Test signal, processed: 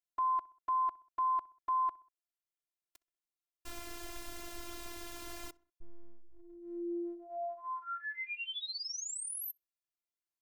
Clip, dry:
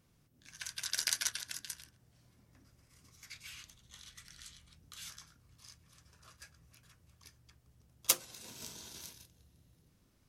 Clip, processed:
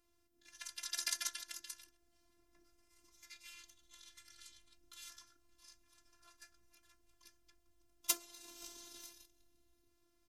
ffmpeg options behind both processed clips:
ffmpeg -i in.wav -filter_complex "[0:a]afftfilt=real='hypot(re,im)*cos(PI*b)':imag='0':win_size=512:overlap=0.75,asplit=2[link_01][link_02];[link_02]adelay=64,lowpass=frequency=2700:poles=1,volume=-23dB,asplit=2[link_03][link_04];[link_04]adelay=64,lowpass=frequency=2700:poles=1,volume=0.5,asplit=2[link_05][link_06];[link_06]adelay=64,lowpass=frequency=2700:poles=1,volume=0.5[link_07];[link_01][link_03][link_05][link_07]amix=inputs=4:normalize=0,volume=-1.5dB" out.wav

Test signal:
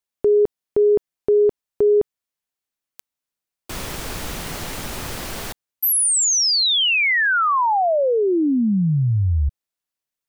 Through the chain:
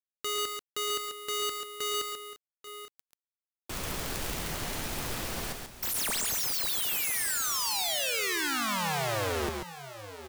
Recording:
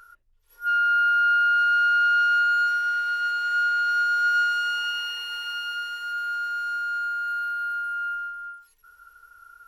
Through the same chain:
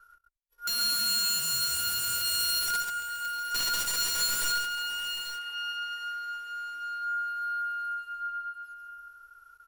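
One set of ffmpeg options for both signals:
ffmpeg -i in.wav -af "aeval=exprs='(mod(10*val(0)+1,2)-1)/10':channel_layout=same,aecho=1:1:113|138|838|867:0.251|0.531|0.211|0.126,agate=range=-33dB:threshold=-53dB:ratio=3:release=24:detection=rms,volume=-6.5dB" out.wav

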